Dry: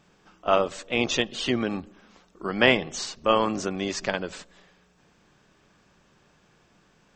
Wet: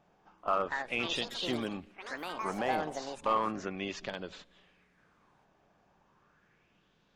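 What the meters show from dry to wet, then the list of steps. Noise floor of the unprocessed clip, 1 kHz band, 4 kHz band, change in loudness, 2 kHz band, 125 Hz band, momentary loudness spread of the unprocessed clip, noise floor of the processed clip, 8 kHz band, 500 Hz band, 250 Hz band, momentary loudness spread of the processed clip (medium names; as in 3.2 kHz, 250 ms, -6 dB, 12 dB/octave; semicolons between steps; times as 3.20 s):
-63 dBFS, -4.5 dB, -9.0 dB, -9.0 dB, -10.0 dB, -10.5 dB, 14 LU, -70 dBFS, -13.5 dB, -10.5 dB, -10.0 dB, 11 LU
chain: resampled via 16 kHz; peak limiter -12.5 dBFS, peak gain reduction 10 dB; peaking EQ 5.6 kHz -7 dB 2.1 oct; ever faster or slower copies 380 ms, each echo +6 st, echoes 3, each echo -6 dB; overload inside the chain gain 16 dB; sweeping bell 0.35 Hz 710–3800 Hz +11 dB; trim -9 dB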